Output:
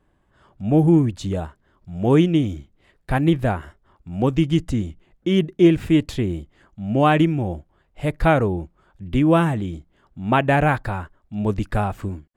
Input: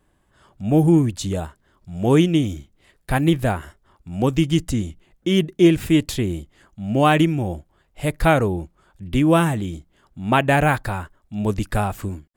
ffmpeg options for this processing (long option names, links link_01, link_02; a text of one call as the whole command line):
ffmpeg -i in.wav -af "lowpass=frequency=2500:poles=1" out.wav